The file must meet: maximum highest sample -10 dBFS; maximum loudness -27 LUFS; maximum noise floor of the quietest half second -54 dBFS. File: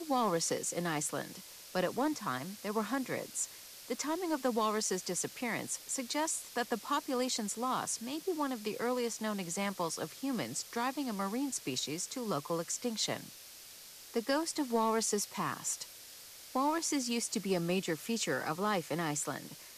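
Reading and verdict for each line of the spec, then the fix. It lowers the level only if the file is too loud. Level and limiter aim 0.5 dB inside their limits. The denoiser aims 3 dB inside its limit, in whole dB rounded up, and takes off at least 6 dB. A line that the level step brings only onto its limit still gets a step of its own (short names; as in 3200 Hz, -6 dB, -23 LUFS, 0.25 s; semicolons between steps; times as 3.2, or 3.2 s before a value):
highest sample -19.0 dBFS: OK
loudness -35.0 LUFS: OK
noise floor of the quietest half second -52 dBFS: fail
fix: denoiser 6 dB, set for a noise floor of -52 dBFS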